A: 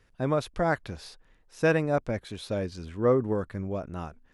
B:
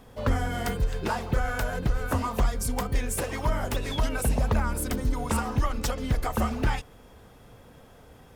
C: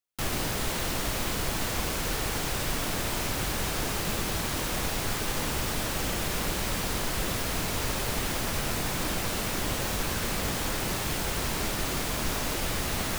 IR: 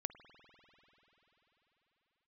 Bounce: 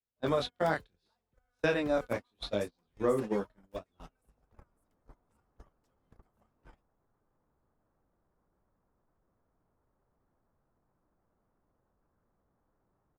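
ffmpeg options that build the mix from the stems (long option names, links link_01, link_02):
-filter_complex "[0:a]highpass=57,equalizer=frequency=3700:width=2.1:gain=10.5,flanger=delay=17.5:depth=7.8:speed=0.71,volume=2dB,asplit=2[link_01][link_02];[1:a]adynamicequalizer=threshold=0.0141:dfrequency=110:dqfactor=0.8:tfrequency=110:tqfactor=0.8:attack=5:release=100:ratio=0.375:range=2:mode=cutabove:tftype=bell,volume=-12dB[link_03];[2:a]lowpass=frequency=1300:width=0.5412,lowpass=frequency=1300:width=1.3066,alimiter=level_in=3dB:limit=-24dB:level=0:latency=1:release=10,volume=-3dB,adelay=2000,volume=-4dB[link_04];[link_02]apad=whole_len=669649[link_05];[link_04][link_05]sidechaincompress=threshold=-41dB:ratio=3:attack=33:release=958[link_06];[link_01][link_03][link_06]amix=inputs=3:normalize=0,agate=range=-39dB:threshold=-29dB:ratio=16:detection=peak,acrossover=split=180|5400[link_07][link_08][link_09];[link_07]acompressor=threshold=-48dB:ratio=4[link_10];[link_08]acompressor=threshold=-25dB:ratio=4[link_11];[link_09]acompressor=threshold=-56dB:ratio=4[link_12];[link_10][link_11][link_12]amix=inputs=3:normalize=0"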